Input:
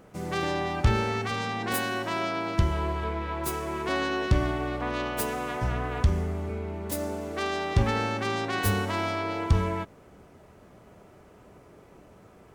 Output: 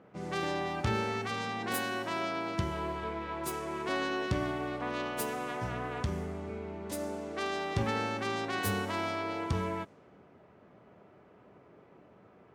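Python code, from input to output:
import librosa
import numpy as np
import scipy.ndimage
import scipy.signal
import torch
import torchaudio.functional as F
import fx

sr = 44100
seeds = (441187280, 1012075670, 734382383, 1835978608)

y = scipy.signal.sosfilt(scipy.signal.butter(2, 120.0, 'highpass', fs=sr, output='sos'), x)
y = fx.env_lowpass(y, sr, base_hz=2600.0, full_db=-26.5)
y = y * librosa.db_to_amplitude(-4.5)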